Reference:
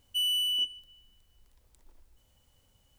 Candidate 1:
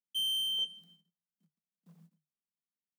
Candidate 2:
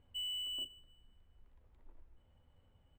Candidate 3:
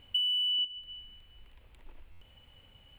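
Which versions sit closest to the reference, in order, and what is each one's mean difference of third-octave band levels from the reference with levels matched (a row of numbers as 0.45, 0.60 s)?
1, 3, 2; 3.0, 4.0, 5.5 dB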